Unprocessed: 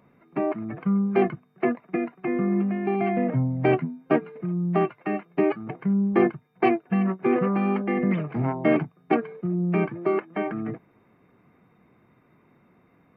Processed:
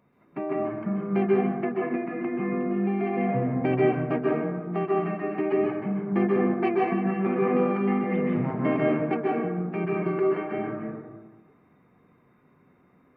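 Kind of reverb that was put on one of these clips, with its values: plate-style reverb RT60 1.3 s, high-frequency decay 0.45×, pre-delay 0.12 s, DRR -3.5 dB; gain -6.5 dB

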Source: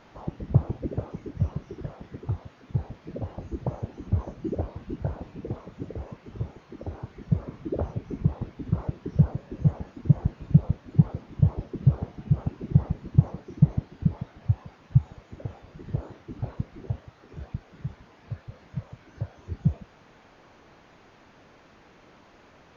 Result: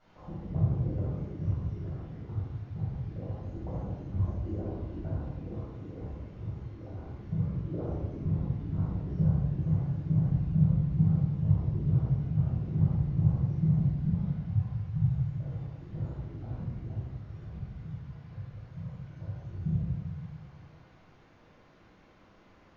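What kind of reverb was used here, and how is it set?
shoebox room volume 710 m³, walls mixed, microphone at 7.2 m; gain -20 dB

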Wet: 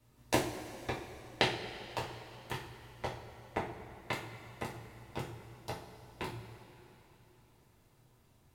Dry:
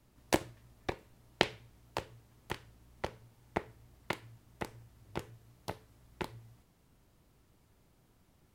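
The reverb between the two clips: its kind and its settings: two-slope reverb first 0.35 s, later 3.5 s, from -17 dB, DRR -5 dB; gain -4.5 dB

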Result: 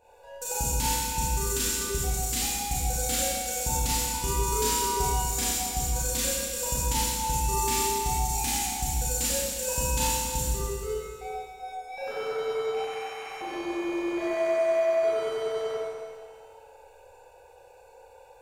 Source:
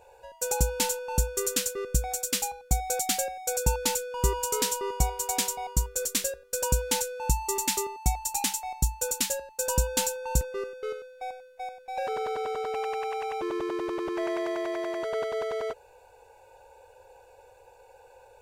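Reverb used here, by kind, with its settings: Schroeder reverb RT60 1.9 s, combs from 27 ms, DRR -9.5 dB; gain -8 dB

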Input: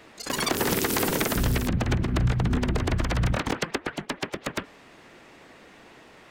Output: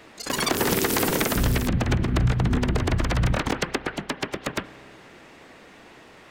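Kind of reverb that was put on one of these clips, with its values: spring tank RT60 2.9 s, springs 31 ms, chirp 65 ms, DRR 16 dB; gain +2 dB

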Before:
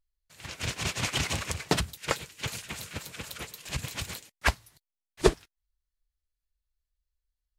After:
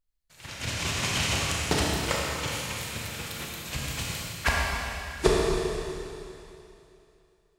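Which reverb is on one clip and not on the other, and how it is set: Schroeder reverb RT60 2.8 s, combs from 27 ms, DRR -4 dB; gain -1.5 dB

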